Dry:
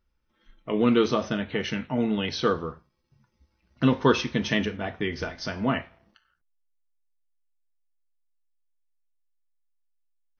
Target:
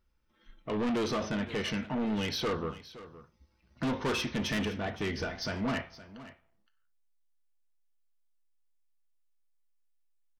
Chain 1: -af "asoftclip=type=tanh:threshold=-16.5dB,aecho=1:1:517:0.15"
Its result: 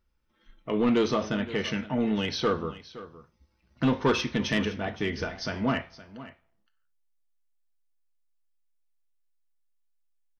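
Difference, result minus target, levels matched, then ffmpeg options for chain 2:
soft clip: distortion -9 dB
-af "asoftclip=type=tanh:threshold=-27.5dB,aecho=1:1:517:0.15"

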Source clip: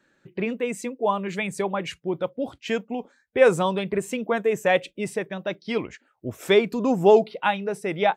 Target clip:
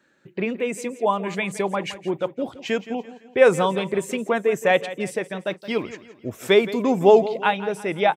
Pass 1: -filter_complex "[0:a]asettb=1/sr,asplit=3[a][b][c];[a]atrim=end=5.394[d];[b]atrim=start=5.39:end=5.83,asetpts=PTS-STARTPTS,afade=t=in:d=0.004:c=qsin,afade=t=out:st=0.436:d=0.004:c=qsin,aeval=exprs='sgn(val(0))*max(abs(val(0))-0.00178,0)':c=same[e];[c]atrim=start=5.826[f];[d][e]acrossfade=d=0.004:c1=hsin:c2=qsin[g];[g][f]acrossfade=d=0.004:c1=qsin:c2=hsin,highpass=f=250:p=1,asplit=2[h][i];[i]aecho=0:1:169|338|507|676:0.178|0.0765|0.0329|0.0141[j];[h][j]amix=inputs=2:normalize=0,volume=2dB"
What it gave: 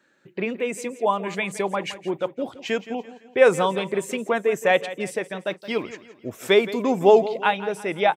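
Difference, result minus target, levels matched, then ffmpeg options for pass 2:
125 Hz band -2.5 dB
-filter_complex "[0:a]asettb=1/sr,asplit=3[a][b][c];[a]atrim=end=5.394[d];[b]atrim=start=5.39:end=5.83,asetpts=PTS-STARTPTS,afade=t=in:d=0.004:c=qsin,afade=t=out:st=0.436:d=0.004:c=qsin,aeval=exprs='sgn(val(0))*max(abs(val(0))-0.00178,0)':c=same[e];[c]atrim=start=5.826[f];[d][e]acrossfade=d=0.004:c1=hsin:c2=qsin[g];[g][f]acrossfade=d=0.004:c1=qsin:c2=hsin,highpass=f=110:p=1,asplit=2[h][i];[i]aecho=0:1:169|338|507|676:0.178|0.0765|0.0329|0.0141[j];[h][j]amix=inputs=2:normalize=0,volume=2dB"

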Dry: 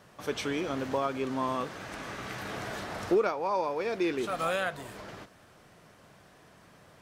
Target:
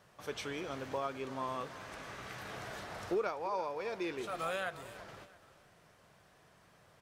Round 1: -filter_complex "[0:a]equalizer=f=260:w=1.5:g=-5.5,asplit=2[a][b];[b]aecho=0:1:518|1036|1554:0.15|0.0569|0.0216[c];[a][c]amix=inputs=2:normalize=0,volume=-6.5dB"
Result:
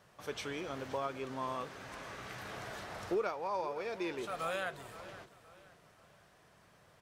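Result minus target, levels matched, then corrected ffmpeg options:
echo 0.18 s late
-filter_complex "[0:a]equalizer=f=260:w=1.5:g=-5.5,asplit=2[a][b];[b]aecho=0:1:338|676|1014:0.15|0.0569|0.0216[c];[a][c]amix=inputs=2:normalize=0,volume=-6.5dB"

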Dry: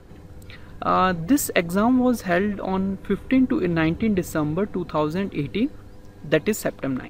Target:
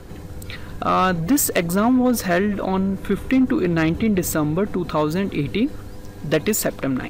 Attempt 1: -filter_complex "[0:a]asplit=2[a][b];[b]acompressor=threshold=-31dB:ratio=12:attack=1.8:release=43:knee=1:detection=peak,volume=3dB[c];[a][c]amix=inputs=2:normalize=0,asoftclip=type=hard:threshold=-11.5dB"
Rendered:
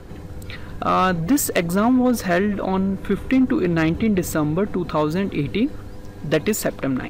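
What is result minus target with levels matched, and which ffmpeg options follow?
8000 Hz band -3.0 dB
-filter_complex "[0:a]asplit=2[a][b];[b]acompressor=threshold=-31dB:ratio=12:attack=1.8:release=43:knee=1:detection=peak,highshelf=f=4.3k:g=9,volume=3dB[c];[a][c]amix=inputs=2:normalize=0,asoftclip=type=hard:threshold=-11.5dB"

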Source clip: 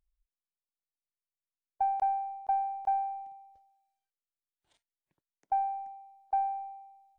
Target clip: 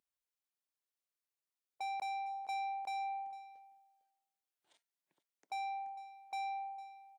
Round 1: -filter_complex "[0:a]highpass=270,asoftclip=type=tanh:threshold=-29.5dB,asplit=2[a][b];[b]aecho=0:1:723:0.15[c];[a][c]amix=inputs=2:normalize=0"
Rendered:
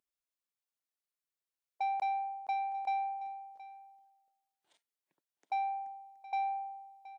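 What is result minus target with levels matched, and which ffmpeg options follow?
echo 0.269 s late; soft clip: distortion -7 dB
-filter_complex "[0:a]highpass=270,asoftclip=type=tanh:threshold=-38dB,asplit=2[a][b];[b]aecho=0:1:454:0.15[c];[a][c]amix=inputs=2:normalize=0"

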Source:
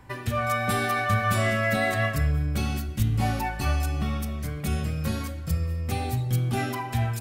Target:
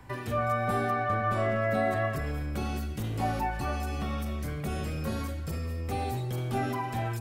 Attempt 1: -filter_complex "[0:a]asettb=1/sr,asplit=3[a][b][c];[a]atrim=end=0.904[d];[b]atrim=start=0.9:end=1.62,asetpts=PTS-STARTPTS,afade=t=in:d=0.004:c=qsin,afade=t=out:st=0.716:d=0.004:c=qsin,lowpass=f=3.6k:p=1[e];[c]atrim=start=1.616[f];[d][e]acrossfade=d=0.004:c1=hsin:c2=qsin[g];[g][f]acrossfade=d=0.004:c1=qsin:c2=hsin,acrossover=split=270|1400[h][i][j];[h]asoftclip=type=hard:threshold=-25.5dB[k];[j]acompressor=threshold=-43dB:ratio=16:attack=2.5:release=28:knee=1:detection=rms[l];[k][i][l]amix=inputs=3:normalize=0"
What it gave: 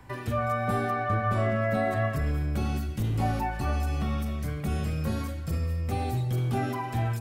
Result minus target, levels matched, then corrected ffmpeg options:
hard clip: distortion -5 dB
-filter_complex "[0:a]asettb=1/sr,asplit=3[a][b][c];[a]atrim=end=0.904[d];[b]atrim=start=0.9:end=1.62,asetpts=PTS-STARTPTS,afade=t=in:d=0.004:c=qsin,afade=t=out:st=0.716:d=0.004:c=qsin,lowpass=f=3.6k:p=1[e];[c]atrim=start=1.616[f];[d][e]acrossfade=d=0.004:c1=hsin:c2=qsin[g];[g][f]acrossfade=d=0.004:c1=qsin:c2=hsin,acrossover=split=270|1400[h][i][j];[h]asoftclip=type=hard:threshold=-32.5dB[k];[j]acompressor=threshold=-43dB:ratio=16:attack=2.5:release=28:knee=1:detection=rms[l];[k][i][l]amix=inputs=3:normalize=0"

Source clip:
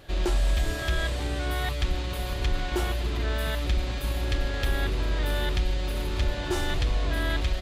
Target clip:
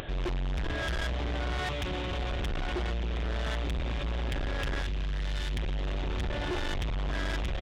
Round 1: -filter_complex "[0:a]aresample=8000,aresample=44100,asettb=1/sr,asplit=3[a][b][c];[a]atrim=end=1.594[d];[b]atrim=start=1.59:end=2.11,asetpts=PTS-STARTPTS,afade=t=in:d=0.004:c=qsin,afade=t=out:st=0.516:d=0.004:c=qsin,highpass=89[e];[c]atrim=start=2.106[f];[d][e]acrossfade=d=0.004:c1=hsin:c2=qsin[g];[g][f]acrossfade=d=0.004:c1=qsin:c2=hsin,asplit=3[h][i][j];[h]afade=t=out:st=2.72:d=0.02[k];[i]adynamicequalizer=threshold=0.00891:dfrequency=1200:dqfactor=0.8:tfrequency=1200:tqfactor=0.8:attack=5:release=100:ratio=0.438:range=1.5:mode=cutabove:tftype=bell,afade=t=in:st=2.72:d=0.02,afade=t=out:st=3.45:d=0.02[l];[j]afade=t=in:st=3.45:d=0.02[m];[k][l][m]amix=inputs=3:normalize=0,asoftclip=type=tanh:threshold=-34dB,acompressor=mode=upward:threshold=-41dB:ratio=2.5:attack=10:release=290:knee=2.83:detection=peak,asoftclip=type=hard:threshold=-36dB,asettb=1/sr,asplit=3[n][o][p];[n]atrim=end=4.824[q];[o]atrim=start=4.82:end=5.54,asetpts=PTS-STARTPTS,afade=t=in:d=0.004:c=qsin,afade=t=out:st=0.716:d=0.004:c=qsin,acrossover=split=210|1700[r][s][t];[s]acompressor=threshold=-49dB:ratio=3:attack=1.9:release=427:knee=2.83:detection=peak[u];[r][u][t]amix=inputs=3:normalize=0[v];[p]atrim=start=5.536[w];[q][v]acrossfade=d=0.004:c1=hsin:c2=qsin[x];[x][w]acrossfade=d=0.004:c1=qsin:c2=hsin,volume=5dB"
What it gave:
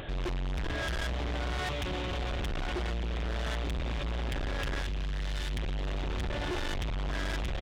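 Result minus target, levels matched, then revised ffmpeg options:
hard clip: distortion +22 dB
-filter_complex "[0:a]aresample=8000,aresample=44100,asettb=1/sr,asplit=3[a][b][c];[a]atrim=end=1.594[d];[b]atrim=start=1.59:end=2.11,asetpts=PTS-STARTPTS,afade=t=in:d=0.004:c=qsin,afade=t=out:st=0.516:d=0.004:c=qsin,highpass=89[e];[c]atrim=start=2.106[f];[d][e]acrossfade=d=0.004:c1=hsin:c2=qsin[g];[g][f]acrossfade=d=0.004:c1=qsin:c2=hsin,asplit=3[h][i][j];[h]afade=t=out:st=2.72:d=0.02[k];[i]adynamicequalizer=threshold=0.00891:dfrequency=1200:dqfactor=0.8:tfrequency=1200:tqfactor=0.8:attack=5:release=100:ratio=0.438:range=1.5:mode=cutabove:tftype=bell,afade=t=in:st=2.72:d=0.02,afade=t=out:st=3.45:d=0.02[l];[j]afade=t=in:st=3.45:d=0.02[m];[k][l][m]amix=inputs=3:normalize=0,asoftclip=type=tanh:threshold=-34dB,acompressor=mode=upward:threshold=-41dB:ratio=2.5:attack=10:release=290:knee=2.83:detection=peak,asoftclip=type=hard:threshold=-25.5dB,asettb=1/sr,asplit=3[n][o][p];[n]atrim=end=4.824[q];[o]atrim=start=4.82:end=5.54,asetpts=PTS-STARTPTS,afade=t=in:d=0.004:c=qsin,afade=t=out:st=0.716:d=0.004:c=qsin,acrossover=split=210|1700[r][s][t];[s]acompressor=threshold=-49dB:ratio=3:attack=1.9:release=427:knee=2.83:detection=peak[u];[r][u][t]amix=inputs=3:normalize=0[v];[p]atrim=start=5.536[w];[q][v]acrossfade=d=0.004:c1=hsin:c2=qsin[x];[x][w]acrossfade=d=0.004:c1=qsin:c2=hsin,volume=5dB"

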